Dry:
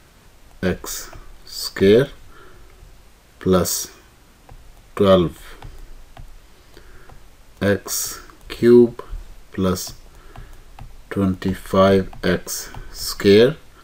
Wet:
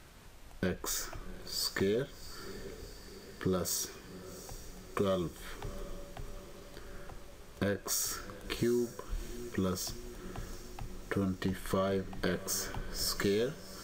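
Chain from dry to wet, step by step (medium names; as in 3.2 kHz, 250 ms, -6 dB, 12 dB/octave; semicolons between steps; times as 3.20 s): compression 6:1, threshold -24 dBFS, peak gain reduction 16.5 dB; on a send: echo that smears into a reverb 746 ms, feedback 63%, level -15 dB; on the sum: trim -5.5 dB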